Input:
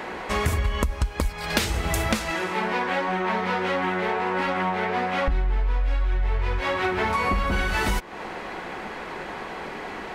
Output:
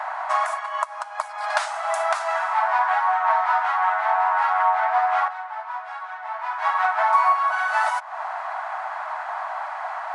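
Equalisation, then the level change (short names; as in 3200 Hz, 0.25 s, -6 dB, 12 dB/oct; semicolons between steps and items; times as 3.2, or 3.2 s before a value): brick-wall FIR band-pass 600–11000 Hz; resonant high shelf 1800 Hz -11 dB, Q 1.5; +6.0 dB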